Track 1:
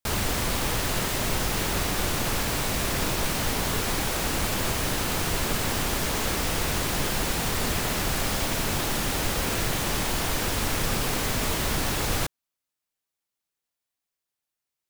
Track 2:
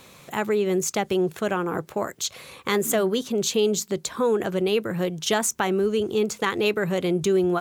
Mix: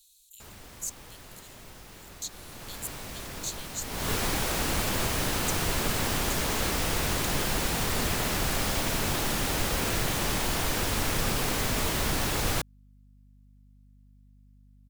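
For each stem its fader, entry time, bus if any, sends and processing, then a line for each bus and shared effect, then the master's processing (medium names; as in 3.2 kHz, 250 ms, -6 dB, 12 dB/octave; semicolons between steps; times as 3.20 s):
2.28 s -21.5 dB -> 2.88 s -13 dB -> 3.81 s -13 dB -> 4.11 s -1.5 dB, 0.35 s, no send, hum 50 Hz, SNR 28 dB
-4.0 dB, 0.00 s, no send, inverse Chebyshev band-stop 200–1400 Hz, stop band 80 dB; high-order bell 3.2 kHz +15.5 dB 1.1 oct; trance gate "xxxx..x.x" 115 bpm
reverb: none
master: none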